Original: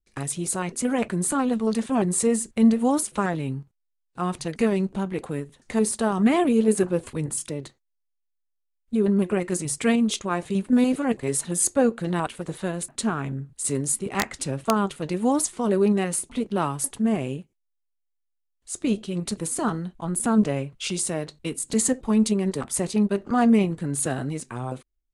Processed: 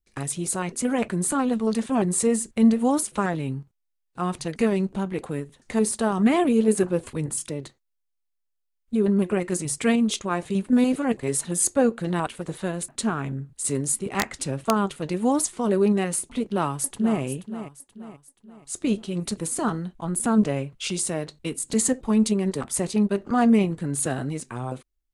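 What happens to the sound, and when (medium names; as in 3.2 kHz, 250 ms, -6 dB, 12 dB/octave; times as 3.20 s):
16.45–17.20 s: echo throw 480 ms, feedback 45%, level -11.5 dB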